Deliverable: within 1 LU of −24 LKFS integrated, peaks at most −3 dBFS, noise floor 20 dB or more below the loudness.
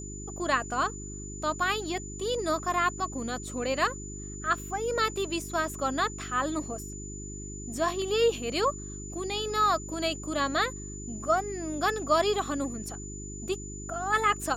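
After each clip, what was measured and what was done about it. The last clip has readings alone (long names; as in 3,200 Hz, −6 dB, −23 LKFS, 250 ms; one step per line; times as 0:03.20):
mains hum 50 Hz; hum harmonics up to 400 Hz; level of the hum −38 dBFS; interfering tone 7,000 Hz; level of the tone −42 dBFS; integrated loudness −30.0 LKFS; sample peak −12.0 dBFS; target loudness −24.0 LKFS
→ hum removal 50 Hz, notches 8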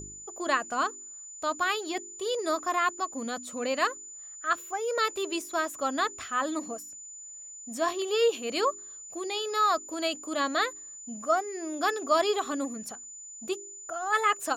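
mains hum none found; interfering tone 7,000 Hz; level of the tone −42 dBFS
→ notch filter 7,000 Hz, Q 30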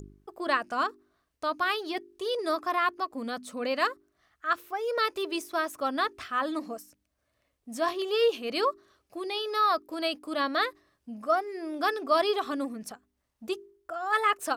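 interfering tone none found; integrated loudness −29.5 LKFS; sample peak −12.0 dBFS; target loudness −24.0 LKFS
→ level +5.5 dB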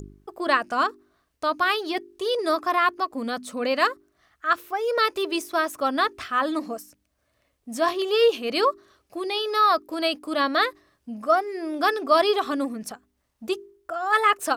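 integrated loudness −24.0 LKFS; sample peak −6.5 dBFS; background noise floor −73 dBFS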